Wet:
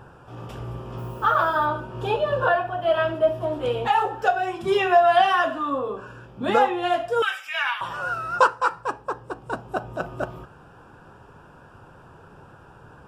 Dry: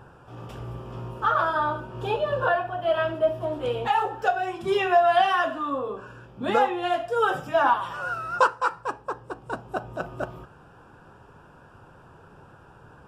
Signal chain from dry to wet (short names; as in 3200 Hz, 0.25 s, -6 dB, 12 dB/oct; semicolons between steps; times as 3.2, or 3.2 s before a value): 0.97–1.65 added noise violet -60 dBFS; 7.22–7.81 resonant high-pass 2200 Hz, resonance Q 7; gain +2.5 dB